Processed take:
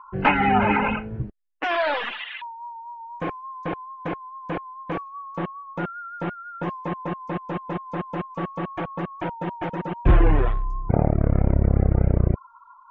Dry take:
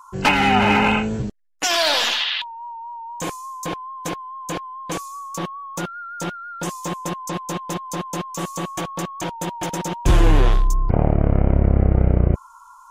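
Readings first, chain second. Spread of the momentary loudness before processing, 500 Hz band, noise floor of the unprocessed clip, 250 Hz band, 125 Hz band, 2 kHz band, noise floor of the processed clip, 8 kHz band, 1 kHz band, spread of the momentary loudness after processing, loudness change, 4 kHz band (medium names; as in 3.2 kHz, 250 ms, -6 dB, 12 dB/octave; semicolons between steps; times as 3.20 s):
13 LU, -2.0 dB, -46 dBFS, -2.5 dB, -2.5 dB, -4.0 dB, -49 dBFS, under -35 dB, -2.5 dB, 14 LU, -3.5 dB, -15.0 dB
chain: low-pass 2.3 kHz 24 dB/octave; reverb removal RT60 1.7 s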